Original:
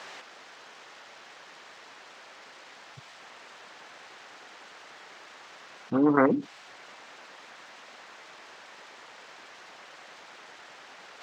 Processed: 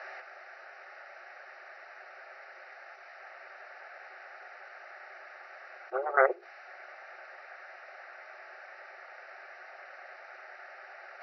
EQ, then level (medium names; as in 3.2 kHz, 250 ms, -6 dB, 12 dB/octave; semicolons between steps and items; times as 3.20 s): brick-wall FIR band-pass 360–5900 Hz; distance through air 210 m; static phaser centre 670 Hz, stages 8; +5.0 dB